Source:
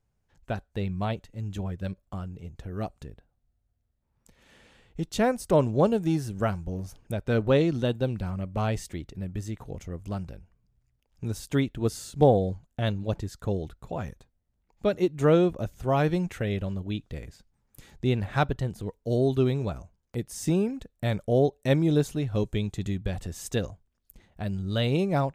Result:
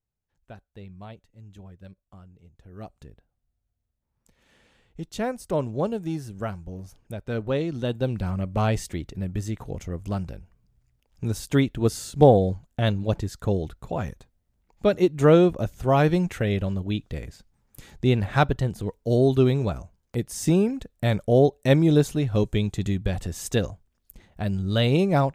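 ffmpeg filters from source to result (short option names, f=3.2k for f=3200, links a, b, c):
-af "volume=4.5dB,afade=t=in:st=2.6:d=0.45:silence=0.375837,afade=t=in:st=7.69:d=0.63:silence=0.375837"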